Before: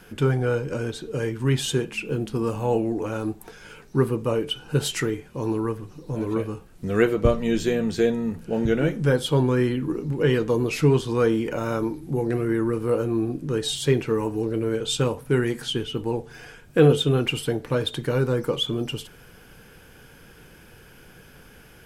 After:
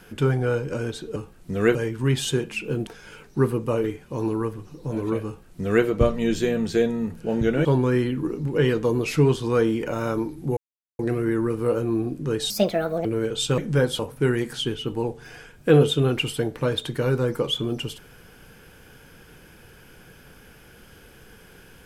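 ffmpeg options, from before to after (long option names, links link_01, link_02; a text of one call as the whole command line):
ffmpeg -i in.wav -filter_complex "[0:a]asplit=11[link_01][link_02][link_03][link_04][link_05][link_06][link_07][link_08][link_09][link_10][link_11];[link_01]atrim=end=1.162[link_12];[link_02]atrim=start=6.498:end=7.092[link_13];[link_03]atrim=start=1.158:end=2.282[link_14];[link_04]atrim=start=3.448:end=4.422[link_15];[link_05]atrim=start=5.078:end=8.892[link_16];[link_06]atrim=start=9.298:end=12.22,asetpts=PTS-STARTPTS,afade=type=out:start_time=2.918:duration=0.004:curve=hsin,apad=pad_dur=0.42[link_17];[link_07]atrim=start=12.22:end=13.734,asetpts=PTS-STARTPTS,afade=type=in:duration=0.004:curve=hsin[link_18];[link_08]atrim=start=13.73:end=14.55,asetpts=PTS-STARTPTS,asetrate=65709,aresample=44100[link_19];[link_09]atrim=start=14.546:end=15.082[link_20];[link_10]atrim=start=8.888:end=9.302[link_21];[link_11]atrim=start=15.078[link_22];[link_12][link_13]acrossfade=duration=0.004:curve1=hsin:curve2=hsin[link_23];[link_23][link_14]acrossfade=duration=0.004:curve1=hsin:curve2=hsin[link_24];[link_24][link_15]acrossfade=duration=0.004:curve1=hsin:curve2=hsin[link_25];[link_25][link_16]acrossfade=duration=0.004:curve1=hsin:curve2=hsin[link_26];[link_17][link_18]concat=n=2:v=0:a=1[link_27];[link_26][link_27]acrossfade=duration=0.004:curve1=hsin:curve2=hsin[link_28];[link_28][link_19]acrossfade=duration=0.004:curve1=hsin:curve2=hsin[link_29];[link_29][link_20]acrossfade=duration=0.004:curve1=hsin:curve2=hsin[link_30];[link_30][link_21]acrossfade=duration=0.004:curve1=hsin:curve2=hsin[link_31];[link_31][link_22]acrossfade=duration=0.004:curve1=hsin:curve2=hsin" out.wav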